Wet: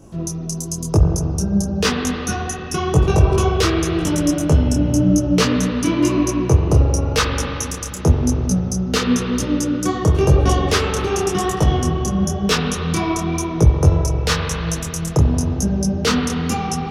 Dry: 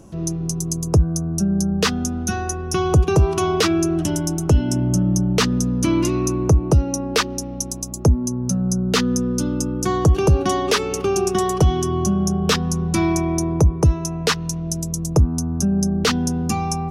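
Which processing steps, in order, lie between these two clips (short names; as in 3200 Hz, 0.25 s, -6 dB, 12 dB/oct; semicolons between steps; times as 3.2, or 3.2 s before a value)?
spring tank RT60 3.4 s, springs 44 ms, chirp 35 ms, DRR 2 dB; wow and flutter 18 cents; detuned doubles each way 33 cents; gain +4 dB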